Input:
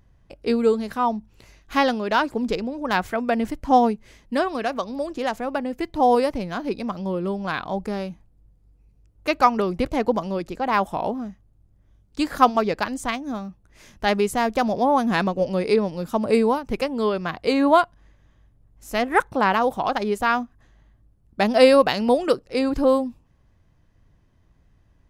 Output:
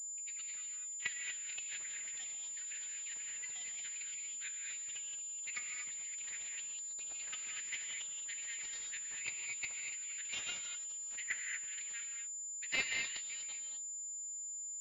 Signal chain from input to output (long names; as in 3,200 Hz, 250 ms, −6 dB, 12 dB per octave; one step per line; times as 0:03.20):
output level in coarse steps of 16 dB
elliptic high-pass filter 2,000 Hz, stop band 50 dB
reverb whose tail is shaped and stops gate 440 ms rising, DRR 2 dB
phase-vocoder stretch with locked phases 0.59×
delay with pitch and tempo change per echo 790 ms, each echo +5 semitones, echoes 3, each echo −6 dB
flanger 0.62 Hz, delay 9.1 ms, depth 3.2 ms, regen −65%
switching amplifier with a slow clock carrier 7,100 Hz
level +4 dB